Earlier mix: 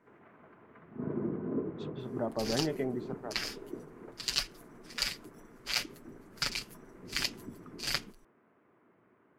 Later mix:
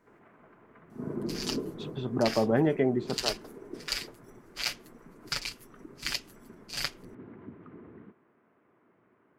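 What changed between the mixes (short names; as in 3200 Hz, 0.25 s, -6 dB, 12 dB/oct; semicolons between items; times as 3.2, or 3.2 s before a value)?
speech +8.0 dB; second sound: entry -1.10 s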